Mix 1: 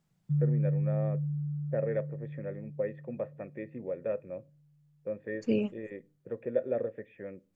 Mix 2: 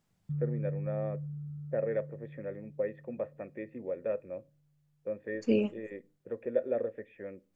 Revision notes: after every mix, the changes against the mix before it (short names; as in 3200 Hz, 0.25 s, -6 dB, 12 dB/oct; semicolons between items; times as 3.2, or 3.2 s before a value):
second voice: send +8.0 dB; background: remove HPF 160 Hz; master: add bell 140 Hz -12 dB 0.48 oct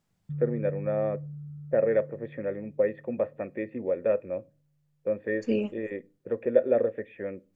first voice +8.0 dB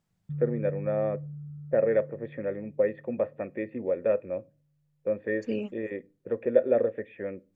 second voice: send off